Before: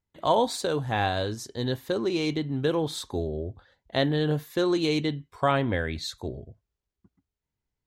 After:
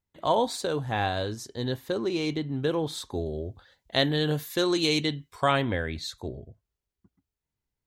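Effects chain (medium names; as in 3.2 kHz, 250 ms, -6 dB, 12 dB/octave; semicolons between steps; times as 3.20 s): 3.26–5.73 s: treble shelf 2.3 kHz +10 dB; trim -1.5 dB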